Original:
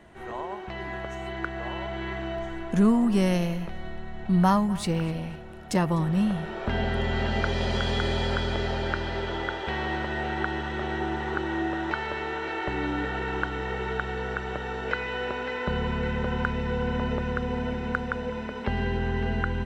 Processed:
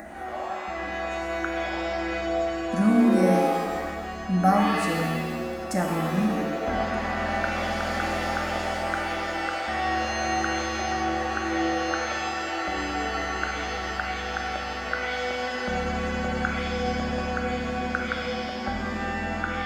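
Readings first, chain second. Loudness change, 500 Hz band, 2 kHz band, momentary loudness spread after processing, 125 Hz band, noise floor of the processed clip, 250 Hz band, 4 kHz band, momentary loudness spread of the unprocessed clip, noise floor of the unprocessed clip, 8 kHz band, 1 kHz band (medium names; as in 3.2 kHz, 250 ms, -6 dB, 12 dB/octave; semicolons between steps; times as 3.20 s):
+1.5 dB, +2.0 dB, +3.0 dB, 8 LU, -4.0 dB, -33 dBFS, +0.5 dB, +2.0 dB, 10 LU, -36 dBFS, +7.5 dB, +5.0 dB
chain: high-pass 51 Hz; peaking EQ 800 Hz +10 dB 0.26 oct; upward compressor, threshold -29 dBFS; static phaser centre 630 Hz, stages 8; pitch-shifted reverb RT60 1.3 s, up +7 st, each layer -2 dB, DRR 2 dB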